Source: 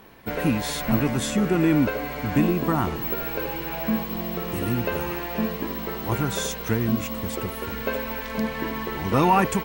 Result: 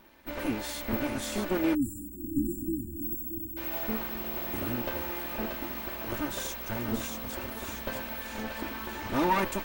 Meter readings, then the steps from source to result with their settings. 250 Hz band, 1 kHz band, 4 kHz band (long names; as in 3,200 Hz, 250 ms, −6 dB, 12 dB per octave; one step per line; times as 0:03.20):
−8.0 dB, −8.5 dB, −6.0 dB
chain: lower of the sound and its delayed copy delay 3.3 ms
feedback echo with a high-pass in the loop 632 ms, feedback 57%, high-pass 790 Hz, level −4 dB
time-frequency box erased 0:01.75–0:03.57, 360–7,000 Hz
level −6.5 dB